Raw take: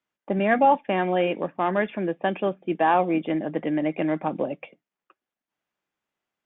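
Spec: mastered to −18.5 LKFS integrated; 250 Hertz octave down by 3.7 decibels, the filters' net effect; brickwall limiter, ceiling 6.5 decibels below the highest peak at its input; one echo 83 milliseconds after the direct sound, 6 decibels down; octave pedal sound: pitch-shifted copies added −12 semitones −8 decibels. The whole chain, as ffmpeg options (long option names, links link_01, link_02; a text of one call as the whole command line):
ffmpeg -i in.wav -filter_complex "[0:a]equalizer=frequency=250:width_type=o:gain=-5.5,alimiter=limit=-16dB:level=0:latency=1,aecho=1:1:83:0.501,asplit=2[link_01][link_02];[link_02]asetrate=22050,aresample=44100,atempo=2,volume=-8dB[link_03];[link_01][link_03]amix=inputs=2:normalize=0,volume=8dB" out.wav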